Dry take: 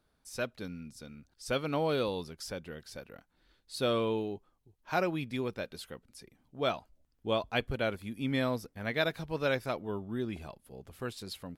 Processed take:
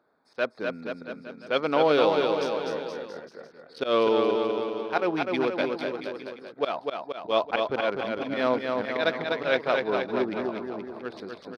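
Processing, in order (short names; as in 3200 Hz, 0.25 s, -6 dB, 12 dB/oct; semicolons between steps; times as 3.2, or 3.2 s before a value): Wiener smoothing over 15 samples; HPF 360 Hz 12 dB/oct; in parallel at -1.5 dB: limiter -24 dBFS, peak gain reduction 9.5 dB; on the sum: auto swell 0.107 s; polynomial smoothing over 15 samples; on a send: bouncing-ball echo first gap 0.25 s, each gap 0.9×, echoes 5; on the sum: gain +6 dB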